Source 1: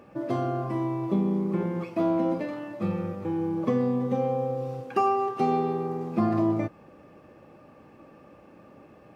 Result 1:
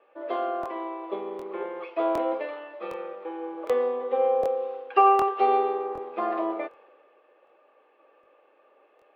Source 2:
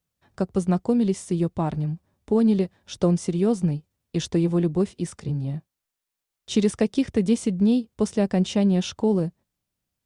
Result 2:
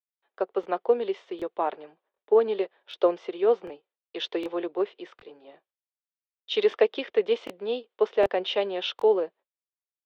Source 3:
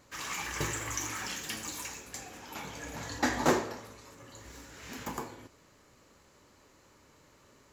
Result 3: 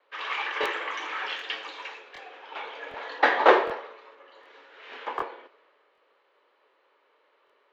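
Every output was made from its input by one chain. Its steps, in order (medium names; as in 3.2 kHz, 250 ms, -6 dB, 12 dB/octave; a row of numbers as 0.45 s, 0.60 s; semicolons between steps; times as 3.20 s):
gate with hold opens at -58 dBFS; elliptic band-pass 430–3400 Hz, stop band 50 dB; crackling interface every 0.76 s, samples 1024, repeat, from 0.61 s; three bands expanded up and down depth 40%; normalise loudness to -27 LUFS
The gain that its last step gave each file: +4.0 dB, +3.5 dB, +8.0 dB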